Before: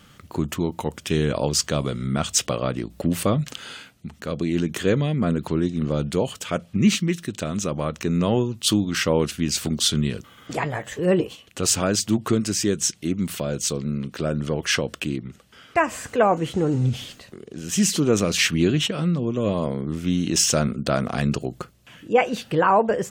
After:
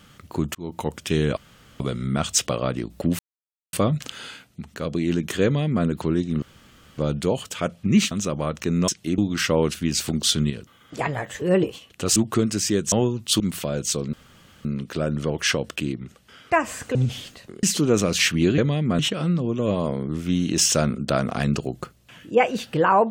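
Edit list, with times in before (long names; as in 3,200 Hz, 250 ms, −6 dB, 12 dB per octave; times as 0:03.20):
0:00.55–0:00.81: fade in
0:01.37–0:01.80: fill with room tone
0:03.19: splice in silence 0.54 s
0:04.90–0:05.31: duplicate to 0:18.77
0:05.88: splice in room tone 0.56 s
0:07.01–0:07.50: remove
0:08.27–0:08.75: swap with 0:12.86–0:13.16
0:10.07–0:10.56: clip gain −5.5 dB
0:11.73–0:12.10: remove
0:13.89: splice in room tone 0.52 s
0:16.19–0:16.79: remove
0:17.47–0:17.82: remove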